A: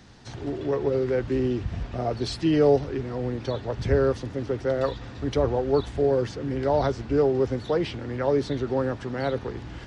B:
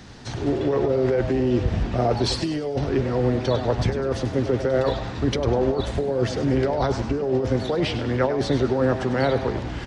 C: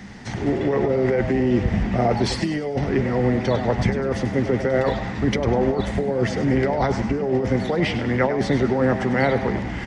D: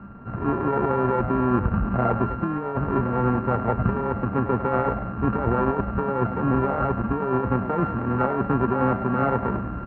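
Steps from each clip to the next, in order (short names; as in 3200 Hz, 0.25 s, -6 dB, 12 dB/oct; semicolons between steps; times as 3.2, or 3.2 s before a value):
negative-ratio compressor -26 dBFS, ratio -1; frequency-shifting echo 0.1 s, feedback 43%, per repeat +130 Hz, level -11.5 dB; gain +5 dB
thirty-one-band EQ 200 Hz +12 dB, 800 Hz +4 dB, 2000 Hz +11 dB, 4000 Hz -5 dB
sample sorter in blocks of 32 samples; LPF 1500 Hz 24 dB/oct; gain -1.5 dB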